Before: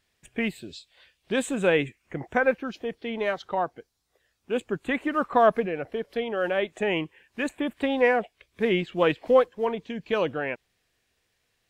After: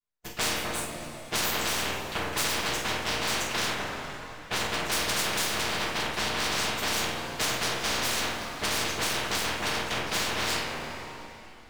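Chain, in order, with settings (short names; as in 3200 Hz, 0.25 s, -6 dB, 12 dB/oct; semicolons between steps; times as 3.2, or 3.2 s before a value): chord vocoder major triad, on A#2; expander -58 dBFS; low shelf 370 Hz +7 dB; harmonic-percussive split harmonic -10 dB; tilt +3 dB/oct; full-wave rectifier; flutter echo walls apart 8.1 m, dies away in 0.32 s; overloaded stage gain 31 dB; reverb, pre-delay 3 ms, DRR -4 dB; spectral compressor 4:1; gain +5 dB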